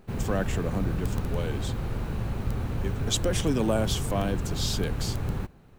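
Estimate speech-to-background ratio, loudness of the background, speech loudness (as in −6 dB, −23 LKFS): 1.0 dB, −32.0 LKFS, −31.0 LKFS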